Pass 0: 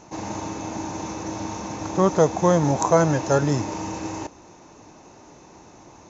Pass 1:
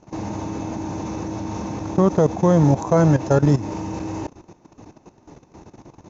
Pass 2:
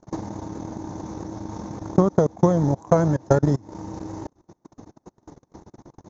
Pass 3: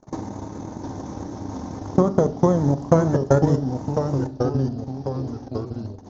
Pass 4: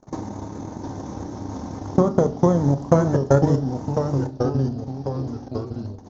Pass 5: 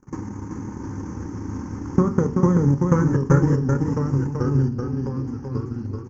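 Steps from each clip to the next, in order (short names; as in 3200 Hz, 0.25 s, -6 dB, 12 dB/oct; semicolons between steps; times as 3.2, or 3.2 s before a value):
LPF 6500 Hz 12 dB/oct; low shelf 450 Hz +10 dB; level quantiser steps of 14 dB
bell 2600 Hz -14 dB 0.41 oct; transient shaper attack +9 dB, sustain -12 dB; vibrato 9.3 Hz 32 cents; gain -6 dB
echoes that change speed 0.692 s, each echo -2 st, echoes 3, each echo -6 dB; reverb RT60 0.50 s, pre-delay 4 ms, DRR 10 dB
doubler 29 ms -13 dB
fixed phaser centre 1600 Hz, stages 4; on a send: echo 0.382 s -4.5 dB; on the sum: gain +2 dB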